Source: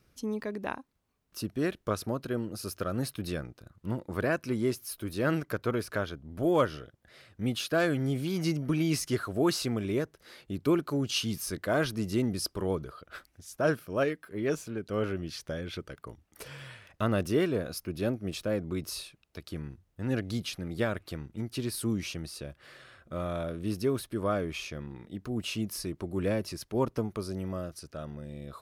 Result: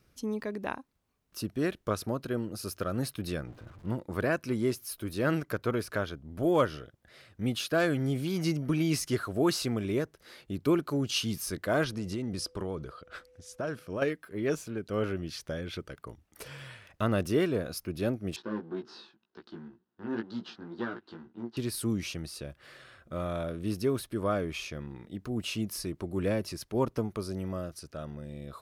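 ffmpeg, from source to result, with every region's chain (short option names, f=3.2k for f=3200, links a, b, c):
-filter_complex "[0:a]asettb=1/sr,asplit=3[a][b][c];[a]atrim=end=3.474[d];[b]atrim=start=3.47:end=3.89,asetpts=PTS-STARTPTS,afade=t=in:d=0.004:c=qsin,afade=t=out:st=0.416:d=0.004:c=qsin,aeval=exprs='val(0)+0.5*0.00447*sgn(val(0))':c=same,lowpass=f=1.6k:p=1[e];[c]atrim=start=3.886[f];[d][e]acrossfade=d=0.004:c1=hsin:c2=qsin[g];[g][f]acrossfade=d=0.004:c1=qsin:c2=hsin,asettb=1/sr,asplit=3[h][i][j];[h]atrim=end=11.844[k];[i]atrim=start=11.84:end=14.02,asetpts=PTS-STARTPTS,afade=t=in:d=0.004:c=qsin,afade=t=out:st=2.176:d=0.004:c=qsin,lowpass=8.8k,acompressor=threshold=-30dB:ratio=5:attack=3.2:release=140:knee=1:detection=peak,aeval=exprs='val(0)+0.00126*sin(2*PI*500*n/s)':c=same[l];[j]atrim=start=14.016[m];[k][l]acrossfade=d=0.004:c1=hsin:c2=qsin[n];[n][m]acrossfade=d=0.004:c1=qsin:c2=hsin,asettb=1/sr,asplit=3[o][p][q];[o]atrim=end=18.364[r];[p]atrim=start=18.36:end=21.57,asetpts=PTS-STARTPTS,afade=t=in:d=0.004:c=qsin,afade=t=out:st=3.206:d=0.004:c=qsin,aeval=exprs='if(lt(val(0),0),0.251*val(0),val(0))':c=same,flanger=delay=16:depth=2.6:speed=2,highpass=220,equalizer=f=220:t=q:w=4:g=9,equalizer=f=360:t=q:w=4:g=10,equalizer=f=590:t=q:w=4:g=-6,equalizer=f=950:t=q:w=4:g=5,equalizer=f=1.5k:t=q:w=4:g=8,equalizer=f=2.3k:t=q:w=4:g=-10,lowpass=f=4.5k:w=0.5412,lowpass=f=4.5k:w=1.3066[s];[q]atrim=start=21.566[t];[r][s]acrossfade=d=0.004:c1=hsin:c2=qsin[u];[u][t]acrossfade=d=0.004:c1=qsin:c2=hsin"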